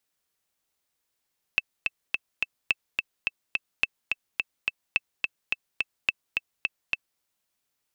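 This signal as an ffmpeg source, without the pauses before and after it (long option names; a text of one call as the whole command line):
ffmpeg -f lavfi -i "aevalsrc='pow(10,(-8-3.5*gte(mod(t,4*60/213),60/213))/20)*sin(2*PI*2640*mod(t,60/213))*exp(-6.91*mod(t,60/213)/0.03)':duration=5.63:sample_rate=44100" out.wav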